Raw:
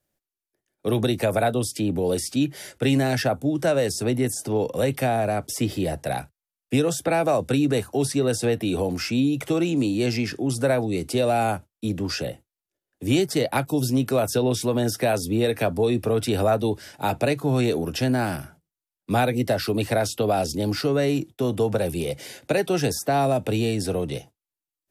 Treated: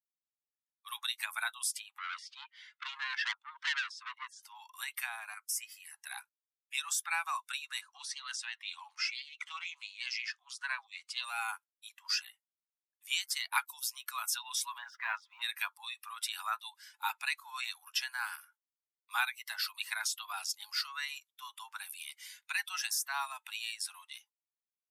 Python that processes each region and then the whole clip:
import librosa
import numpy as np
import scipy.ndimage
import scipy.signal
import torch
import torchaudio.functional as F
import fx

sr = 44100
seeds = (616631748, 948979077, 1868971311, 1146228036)

y = fx.chain(x, sr, fx.cheby1_bandpass(low_hz=490.0, high_hz=3600.0, order=2),
    fx.transformer_sat(knee_hz=3200.0), at=(1.98, 4.43))
y = fx.chain(y, sr, fx.highpass(hz=1500.0, slope=12),
    fx.peak_eq(hz=3600.0, db=-12.0, octaves=0.46), at=(5.34, 5.94))
y = fx.chain(y, sr, fx.lowpass(hz=6400.0, slope=12),
    fx.doppler_dist(depth_ms=0.18), at=(7.81, 11.24))
y = fx.chain(y, sr, fx.lowpass(hz=2000.0, slope=12),
    fx.leveller(passes=1), at=(14.78, 15.42))
y = fx.bin_expand(y, sr, power=1.5)
y = scipy.signal.sosfilt(scipy.signal.butter(12, 940.0, 'highpass', fs=sr, output='sos'), y)